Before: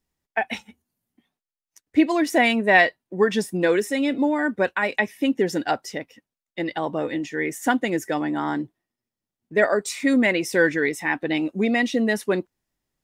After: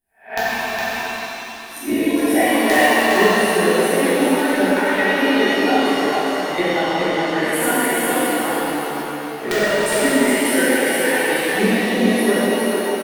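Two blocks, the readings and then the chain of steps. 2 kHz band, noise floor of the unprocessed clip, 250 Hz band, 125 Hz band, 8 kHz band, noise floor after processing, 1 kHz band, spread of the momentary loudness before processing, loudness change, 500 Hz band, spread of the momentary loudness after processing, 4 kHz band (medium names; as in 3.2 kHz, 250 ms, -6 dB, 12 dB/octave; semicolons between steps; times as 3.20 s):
+5.0 dB, under -85 dBFS, +4.5 dB, +5.0 dB, +12.5 dB, -32 dBFS, +7.0 dB, 9 LU, +5.0 dB, +6.0 dB, 9 LU, +9.5 dB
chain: reverse spectral sustain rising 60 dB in 0.33 s; recorder AGC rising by 6.9 dB/s; reverb removal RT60 1.5 s; resonant high shelf 8 kHz +8 dB, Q 3; transient shaper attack +8 dB, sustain -11 dB; integer overflow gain 1 dB; on a send: delay 412 ms -3.5 dB; on the sum: pitch-shifted reverb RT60 3.3 s, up +7 st, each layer -8 dB, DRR -10.5 dB; trim -11 dB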